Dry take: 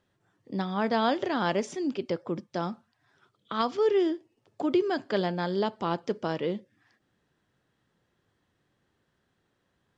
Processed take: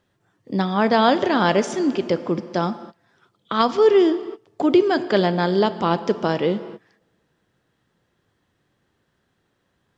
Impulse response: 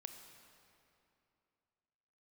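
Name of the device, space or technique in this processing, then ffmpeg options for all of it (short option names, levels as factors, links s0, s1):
keyed gated reverb: -filter_complex "[0:a]asplit=3[s0][s1][s2];[1:a]atrim=start_sample=2205[s3];[s1][s3]afir=irnorm=-1:irlink=0[s4];[s2]apad=whole_len=440064[s5];[s4][s5]sidechaingate=range=0.0501:threshold=0.00178:ratio=16:detection=peak,volume=1.33[s6];[s0][s6]amix=inputs=2:normalize=0,volume=1.68"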